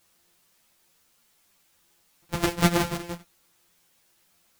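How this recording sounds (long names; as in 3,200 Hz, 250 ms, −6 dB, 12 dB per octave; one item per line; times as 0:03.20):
a buzz of ramps at a fixed pitch in blocks of 256 samples
sample-and-hold tremolo, depth 70%
a quantiser's noise floor 12 bits, dither triangular
a shimmering, thickened sound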